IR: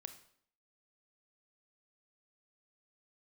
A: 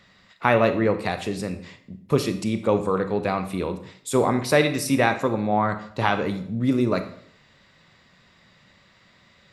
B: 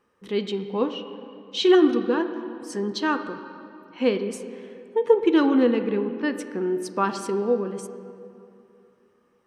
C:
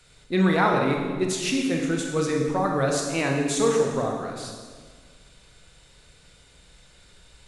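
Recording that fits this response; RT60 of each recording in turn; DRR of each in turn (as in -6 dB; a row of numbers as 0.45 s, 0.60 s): A; 0.60 s, 2.7 s, 1.6 s; 8.5 dB, 8.0 dB, 0.5 dB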